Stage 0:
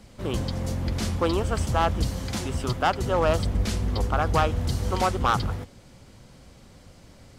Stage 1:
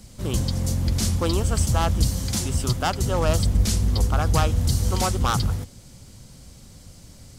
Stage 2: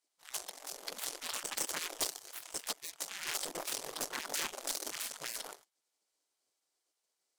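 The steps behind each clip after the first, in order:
tone controls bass +8 dB, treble +14 dB; gain -2.5 dB
wavefolder -13.5 dBFS; added harmonics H 3 -10 dB, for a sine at -13.5 dBFS; spectral gate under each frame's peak -20 dB weak; gain -5.5 dB

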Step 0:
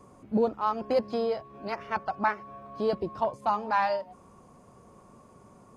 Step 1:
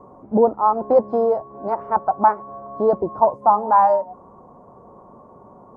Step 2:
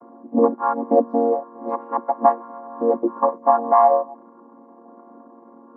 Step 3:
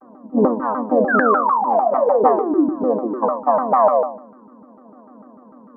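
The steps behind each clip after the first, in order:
EQ curve 120 Hz 0 dB, 930 Hz +10 dB, 2700 Hz -22 dB; gain +3.5 dB
chord vocoder minor triad, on A#3
painted sound fall, 1.08–2.7, 270–1600 Hz -18 dBFS; shoebox room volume 610 m³, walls furnished, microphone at 1.9 m; shaped vibrato saw down 6.7 Hz, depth 250 cents; gain -2 dB

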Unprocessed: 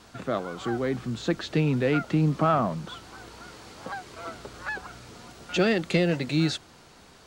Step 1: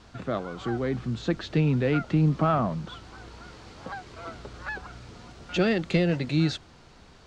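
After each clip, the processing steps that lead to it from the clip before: LPF 6200 Hz 12 dB/oct; low shelf 110 Hz +11 dB; gain -2 dB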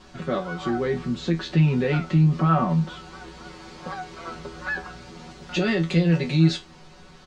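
comb 5.4 ms, depth 88%; limiter -15 dBFS, peak gain reduction 8 dB; resonator 82 Hz, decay 0.2 s, harmonics all, mix 90%; gain +8.5 dB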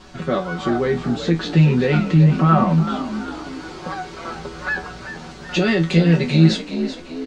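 frequency-shifting echo 0.382 s, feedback 45%, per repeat +51 Hz, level -11 dB; gain +5 dB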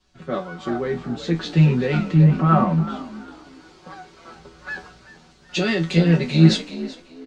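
three-band expander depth 70%; gain -3.5 dB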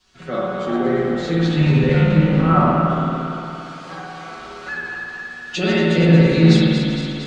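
regenerating reverse delay 0.115 s, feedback 72%, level -6 dB; spring tank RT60 1.2 s, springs 54 ms, chirp 70 ms, DRR -4 dB; mismatched tape noise reduction encoder only; gain -2.5 dB

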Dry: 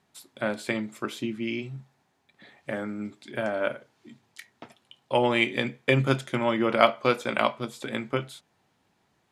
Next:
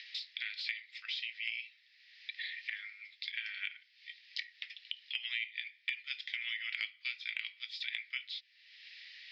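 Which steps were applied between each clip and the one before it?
upward compressor, threshold -32 dBFS; Chebyshev band-pass 1900–5100 Hz, order 4; compressor 16:1, threshold -40 dBFS, peak gain reduction 21 dB; gain +6 dB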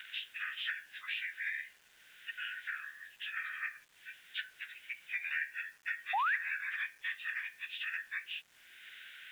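inharmonic rescaling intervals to 89%; painted sound rise, 6.13–6.36, 720–2100 Hz -34 dBFS; bit-crush 11-bit; gain +3 dB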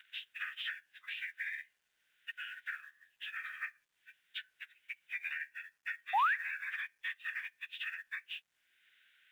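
limiter -31 dBFS, peak gain reduction 8.5 dB; upward expander 2.5:1, over -51 dBFS; gain +8 dB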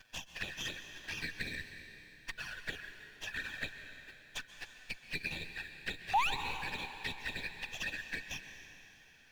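minimum comb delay 1.2 ms; envelope flanger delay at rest 9.7 ms, full sweep at -37.5 dBFS; plate-style reverb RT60 3.2 s, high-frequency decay 0.95×, pre-delay 0.115 s, DRR 8 dB; gain +5.5 dB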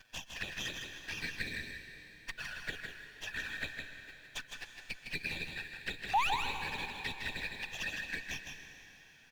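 echo 0.159 s -5.5 dB

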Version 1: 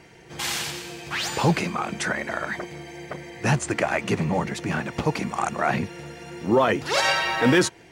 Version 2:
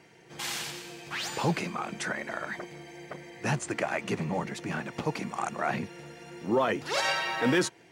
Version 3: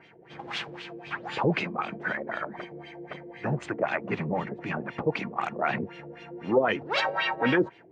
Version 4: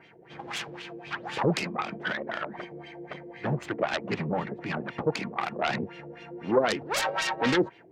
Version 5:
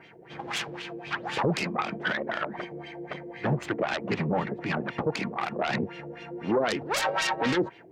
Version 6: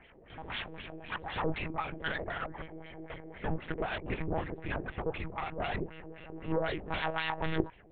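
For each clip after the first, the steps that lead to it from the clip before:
HPF 120 Hz 12 dB/oct; gain -6.5 dB
LFO low-pass sine 3.9 Hz 420–3500 Hz
self-modulated delay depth 0.22 ms
limiter -19.5 dBFS, peak gain reduction 8.5 dB; gain +3 dB
monotone LPC vocoder at 8 kHz 160 Hz; gain -6 dB

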